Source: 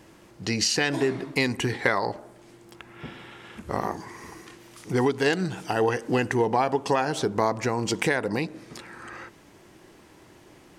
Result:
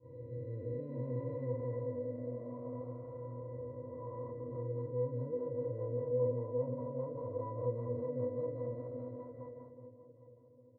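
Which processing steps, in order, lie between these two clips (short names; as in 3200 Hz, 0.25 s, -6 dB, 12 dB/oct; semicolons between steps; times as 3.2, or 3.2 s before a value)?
time blur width 0.784 s; comb 2.1 ms, depth 84%; frequency-shifting echo 0.408 s, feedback 47%, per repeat +130 Hz, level -9 dB; downsampling 8000 Hz; gate -46 dBFS, range -14 dB; EQ curve 160 Hz 0 dB, 580 Hz +6 dB, 1400 Hz -9 dB, 2100 Hz -22 dB; darkening echo 0.806 s, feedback 43%, low-pass 1400 Hz, level -17 dB; compressor 3:1, threshold -29 dBFS, peak gain reduction 8.5 dB; rotary speaker horn 0.6 Hz, later 5 Hz, at 3.91; octave resonator B, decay 0.15 s; gain +5 dB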